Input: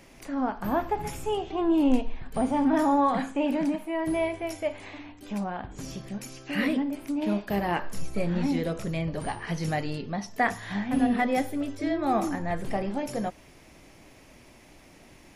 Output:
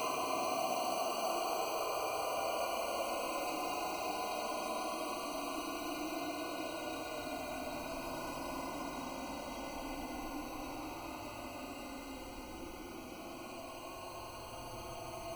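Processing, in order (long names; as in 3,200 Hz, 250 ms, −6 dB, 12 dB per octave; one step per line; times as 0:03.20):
source passing by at 0:06.26, 7 m/s, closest 1.4 metres
inverse Chebyshev high-pass filter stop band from 160 Hz, stop band 40 dB
decimation without filtering 25×
four-comb reverb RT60 0.84 s, combs from 26 ms, DRR −3.5 dB
extreme stretch with random phases 46×, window 0.05 s, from 0:12.16
level +13.5 dB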